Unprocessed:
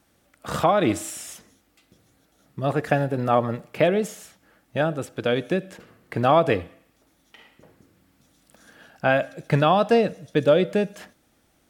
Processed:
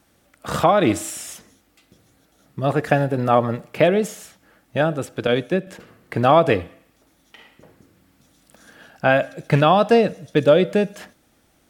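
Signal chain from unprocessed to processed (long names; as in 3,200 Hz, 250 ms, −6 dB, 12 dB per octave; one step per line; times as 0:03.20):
loose part that buzzes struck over −19 dBFS, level −26 dBFS
0:05.27–0:05.67: multiband upward and downward expander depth 100%
level +3.5 dB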